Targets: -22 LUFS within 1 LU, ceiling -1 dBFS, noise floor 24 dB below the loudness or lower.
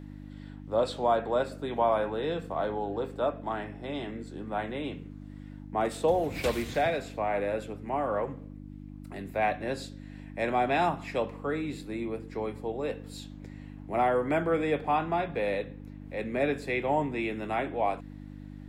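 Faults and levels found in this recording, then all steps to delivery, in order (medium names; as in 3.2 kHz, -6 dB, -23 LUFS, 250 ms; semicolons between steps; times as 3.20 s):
hum 50 Hz; highest harmonic 300 Hz; hum level -41 dBFS; loudness -30.5 LUFS; peak level -14.0 dBFS; loudness target -22.0 LUFS
-> de-hum 50 Hz, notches 6; trim +8.5 dB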